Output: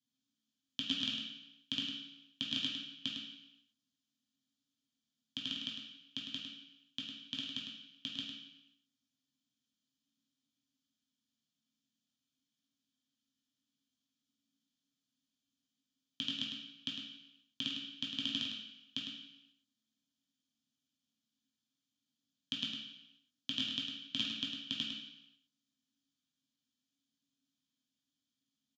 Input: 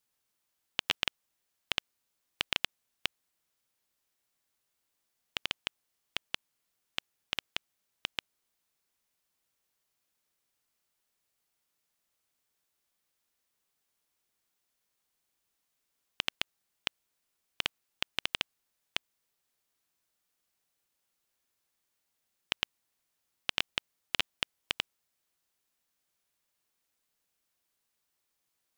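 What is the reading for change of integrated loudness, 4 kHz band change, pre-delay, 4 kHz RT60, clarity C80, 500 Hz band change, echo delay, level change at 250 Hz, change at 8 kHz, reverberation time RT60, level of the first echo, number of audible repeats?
-3.0 dB, -0.5 dB, 3 ms, 0.85 s, 3.5 dB, -15.0 dB, 0.104 s, +9.5 dB, -7.0 dB, 0.90 s, -6.5 dB, 1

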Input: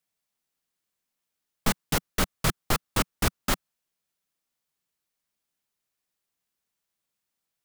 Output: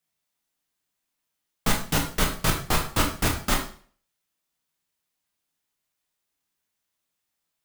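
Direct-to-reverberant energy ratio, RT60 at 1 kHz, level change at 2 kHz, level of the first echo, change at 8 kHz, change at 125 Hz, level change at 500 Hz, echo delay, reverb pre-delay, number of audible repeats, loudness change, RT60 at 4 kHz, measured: 0.0 dB, 0.45 s, +3.0 dB, none, +2.5 dB, +2.5 dB, +2.0 dB, none, 6 ms, none, +3.0 dB, 0.45 s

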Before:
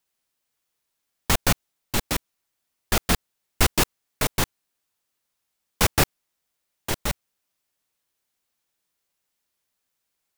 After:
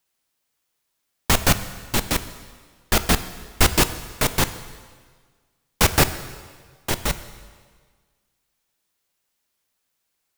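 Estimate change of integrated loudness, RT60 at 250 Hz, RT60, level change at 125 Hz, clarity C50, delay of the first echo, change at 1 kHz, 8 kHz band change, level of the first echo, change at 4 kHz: +3.0 dB, 1.6 s, 1.6 s, +3.5 dB, 13.0 dB, none, +3.5 dB, +3.5 dB, none, +3.5 dB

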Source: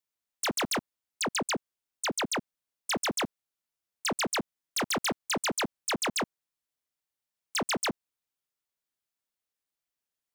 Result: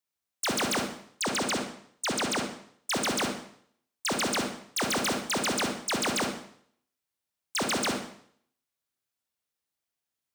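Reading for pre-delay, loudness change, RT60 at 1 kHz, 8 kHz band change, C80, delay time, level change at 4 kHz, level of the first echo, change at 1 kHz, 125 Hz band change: 35 ms, +2.0 dB, 0.60 s, +1.5 dB, 10.0 dB, none, +2.0 dB, none, +2.0 dB, +3.0 dB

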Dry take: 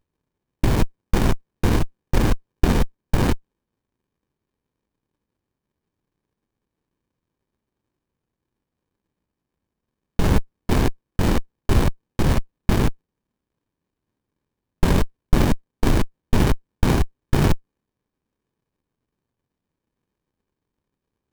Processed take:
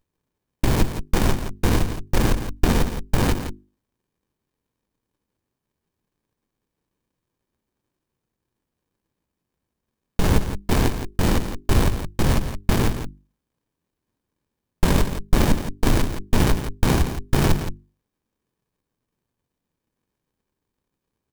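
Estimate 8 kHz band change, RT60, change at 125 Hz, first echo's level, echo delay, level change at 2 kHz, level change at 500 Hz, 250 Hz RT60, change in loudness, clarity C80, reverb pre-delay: +4.0 dB, none, -0.5 dB, -10.0 dB, 0.169 s, +1.0 dB, 0.0 dB, none, 0.0 dB, none, none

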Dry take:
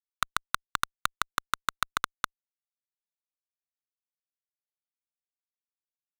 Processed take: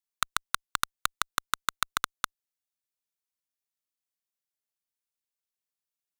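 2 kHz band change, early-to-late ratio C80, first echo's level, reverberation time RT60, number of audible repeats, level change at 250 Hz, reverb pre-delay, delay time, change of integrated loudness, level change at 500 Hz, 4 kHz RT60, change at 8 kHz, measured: 0.0 dB, none, none, none, none, -1.5 dB, none, none, +0.5 dB, -1.5 dB, none, +4.0 dB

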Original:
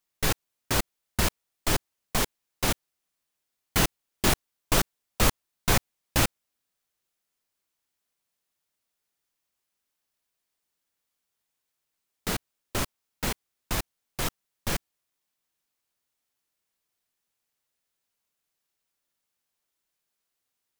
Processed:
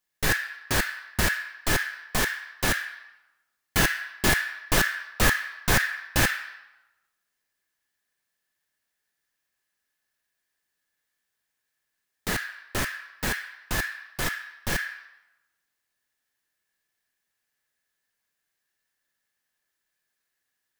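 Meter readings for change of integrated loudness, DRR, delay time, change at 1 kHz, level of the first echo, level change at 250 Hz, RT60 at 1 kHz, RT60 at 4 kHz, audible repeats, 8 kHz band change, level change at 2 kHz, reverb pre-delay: +2.5 dB, -5.0 dB, none, +1.0 dB, none, 0.0 dB, 0.95 s, 0.80 s, none, +0.5 dB, +9.0 dB, 4 ms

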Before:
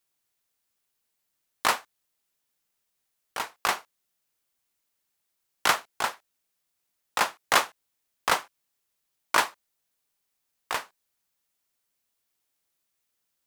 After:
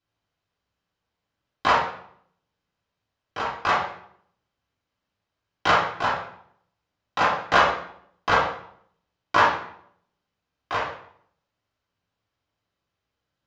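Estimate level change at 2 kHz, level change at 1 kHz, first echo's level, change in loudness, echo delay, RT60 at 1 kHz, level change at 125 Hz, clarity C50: +4.5 dB, +6.5 dB, none, +4.0 dB, none, 0.60 s, +14.0 dB, 2.5 dB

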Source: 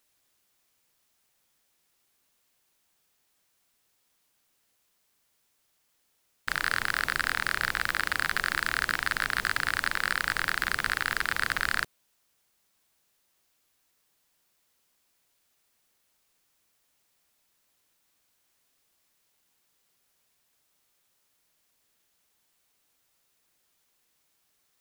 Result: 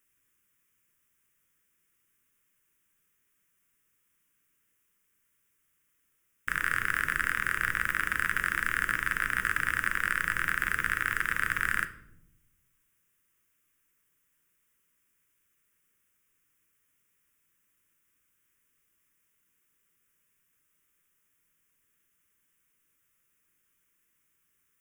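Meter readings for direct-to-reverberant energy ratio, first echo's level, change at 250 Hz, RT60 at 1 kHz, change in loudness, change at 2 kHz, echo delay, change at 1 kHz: 9.0 dB, none, -0.5 dB, 0.65 s, -0.5 dB, 0.0 dB, none, -1.5 dB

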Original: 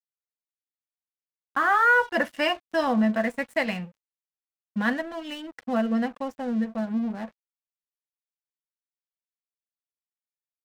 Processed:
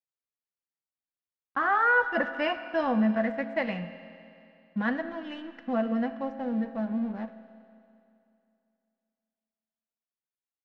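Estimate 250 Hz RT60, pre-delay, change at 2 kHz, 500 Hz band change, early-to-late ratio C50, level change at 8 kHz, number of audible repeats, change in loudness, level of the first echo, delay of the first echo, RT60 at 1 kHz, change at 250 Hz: 2.7 s, 8 ms, -3.5 dB, -2.5 dB, 11.0 dB, n/a, none, -3.0 dB, none, none, 2.7 s, -2.5 dB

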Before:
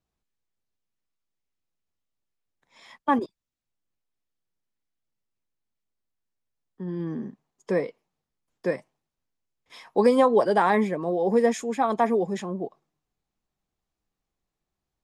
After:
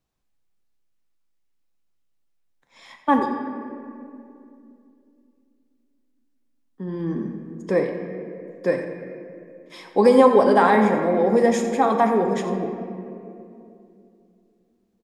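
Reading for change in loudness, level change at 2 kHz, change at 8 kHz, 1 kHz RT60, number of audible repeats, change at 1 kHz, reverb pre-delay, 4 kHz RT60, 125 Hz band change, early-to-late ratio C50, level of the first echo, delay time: +4.5 dB, +5.0 dB, n/a, 2.3 s, 1, +5.0 dB, 4 ms, 1.4 s, +4.5 dB, 5.0 dB, -13.5 dB, 88 ms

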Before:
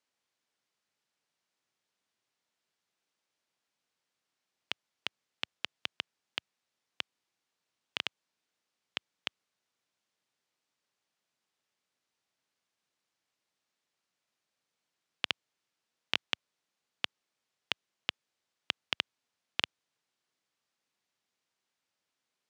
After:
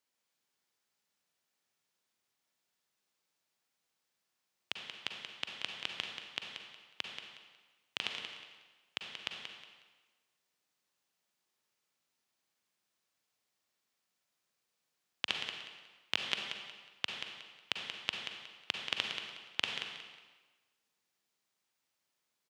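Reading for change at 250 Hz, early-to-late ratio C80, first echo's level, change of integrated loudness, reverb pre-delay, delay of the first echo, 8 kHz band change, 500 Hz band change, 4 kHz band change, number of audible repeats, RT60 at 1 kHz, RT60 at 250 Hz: -0.5 dB, 3.0 dB, -8.0 dB, -1.0 dB, 38 ms, 0.182 s, +2.0 dB, -0.5 dB, 0.0 dB, 2, 1.3 s, 1.2 s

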